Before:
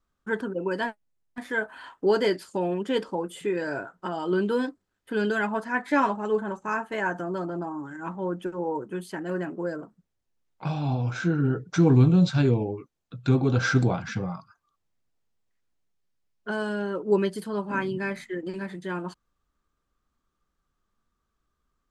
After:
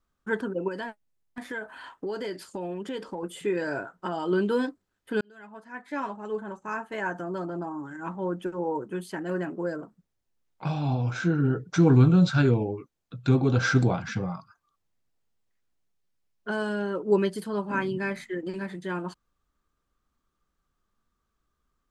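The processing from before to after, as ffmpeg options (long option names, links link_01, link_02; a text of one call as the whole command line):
ffmpeg -i in.wav -filter_complex "[0:a]asettb=1/sr,asplit=3[link_01][link_02][link_03];[link_01]atrim=end=0.684[link_04];[link_02]atrim=start=0.68:end=3.23,asetpts=PTS-STARTPTS,afade=type=in:duration=0.004:curve=qsin,afade=type=out:start_time=2.546:duration=0.004:curve=qsin,acompressor=threshold=-31dB:ratio=4:attack=3.2:release=140:knee=1:detection=peak[link_05];[link_03]atrim=start=3.226[link_06];[link_04][link_05]acrossfade=duration=0.004:curve1=hsin:curve2=qsin[link_07];[link_07][link_06]acrossfade=duration=0.004:curve1=qsin:curve2=hsin,asettb=1/sr,asplit=3[link_08][link_09][link_10];[link_08]atrim=end=11.874[link_11];[link_09]atrim=start=11.87:end=12.6,asetpts=PTS-STARTPTS,afade=type=in:duration=0.004:curve=qsin,afade=type=out:start_time=0.726:duration=0.004:curve=qsin,equalizer=frequency=1400:width_type=o:width=0.34:gain=9.5[link_12];[link_10]atrim=start=12.596[link_13];[link_11][link_12]acrossfade=duration=0.004:curve1=hsin:curve2=qsin[link_14];[link_14][link_13]acrossfade=duration=0.004:curve1=qsin:curve2=hsin,asplit=2[link_15][link_16];[link_15]atrim=end=5.21,asetpts=PTS-STARTPTS,afade=type=out:start_time=5.206:duration=0.004:curve=hsin[link_17];[link_16]atrim=start=5.21,asetpts=PTS-STARTPTS,afade=type=in:duration=3.69:curve=qsin[link_18];[link_17][link_18]concat=n=2:v=0:a=1" out.wav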